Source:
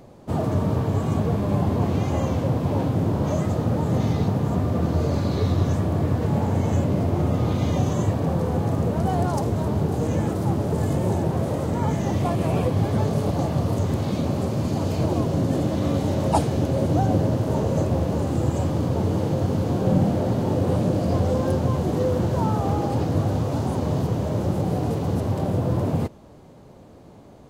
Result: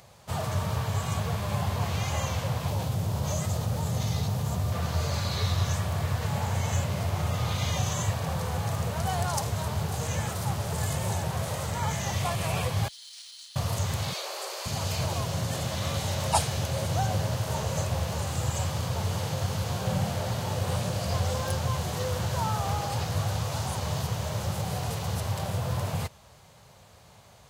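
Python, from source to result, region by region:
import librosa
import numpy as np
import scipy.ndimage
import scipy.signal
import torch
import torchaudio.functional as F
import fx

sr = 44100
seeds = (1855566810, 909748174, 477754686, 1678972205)

y = fx.chain(x, sr, fx.peak_eq(hz=1700.0, db=-8.0, octaves=2.3),
    fx.env_flatten(amount_pct=50), at=(2.68, 4.72))
y = fx.chain(y, sr, fx.cheby_ripple_highpass(hz=3000.0, ripple_db=9),
    fx.resample_linear(factor=3), at=(12.88, 13.56))
y = fx.chain(y, sr, fx.cheby1_highpass(hz=350.0, order=6),
    fx.peak_eq(hz=4500.0, db=4.5, octaves=0.22), at=(14.13, 14.66))
y = scipy.signal.sosfilt(scipy.signal.butter(2, 78.0, 'highpass', fs=sr, output='sos'), y)
y = fx.tone_stack(y, sr, knobs='10-0-10')
y = F.gain(torch.from_numpy(y), 8.0).numpy()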